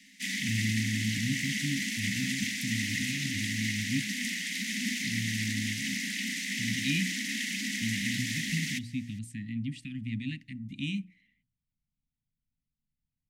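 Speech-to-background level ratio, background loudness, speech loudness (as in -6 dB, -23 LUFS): -4.5 dB, -31.5 LUFS, -36.0 LUFS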